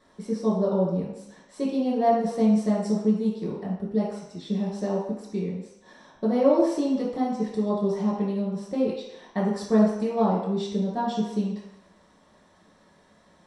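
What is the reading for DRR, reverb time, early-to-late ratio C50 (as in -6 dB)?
-7.0 dB, 0.85 s, 2.0 dB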